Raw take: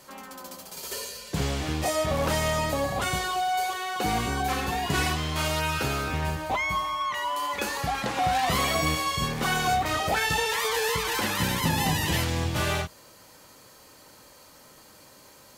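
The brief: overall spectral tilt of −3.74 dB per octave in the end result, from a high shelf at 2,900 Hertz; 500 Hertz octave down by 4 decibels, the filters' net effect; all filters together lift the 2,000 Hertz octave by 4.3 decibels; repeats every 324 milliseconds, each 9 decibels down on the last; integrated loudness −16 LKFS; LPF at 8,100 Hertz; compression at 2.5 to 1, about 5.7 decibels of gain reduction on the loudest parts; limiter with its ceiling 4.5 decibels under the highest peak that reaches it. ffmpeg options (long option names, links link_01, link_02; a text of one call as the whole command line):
ffmpeg -i in.wav -af "lowpass=8100,equalizer=frequency=500:width_type=o:gain=-5.5,equalizer=frequency=2000:width_type=o:gain=7,highshelf=frequency=2900:gain=-4,acompressor=threshold=-29dB:ratio=2.5,alimiter=limit=-22.5dB:level=0:latency=1,aecho=1:1:324|648|972|1296:0.355|0.124|0.0435|0.0152,volume=14.5dB" out.wav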